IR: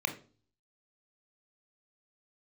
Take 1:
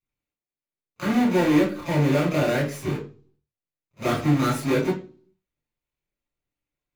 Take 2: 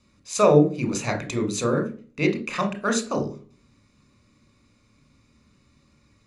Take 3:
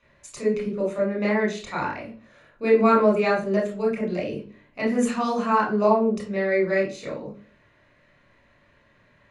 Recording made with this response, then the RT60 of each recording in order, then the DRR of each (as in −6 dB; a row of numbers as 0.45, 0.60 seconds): 2; 0.40, 0.40, 0.40 seconds; −9.0, 6.0, −3.0 decibels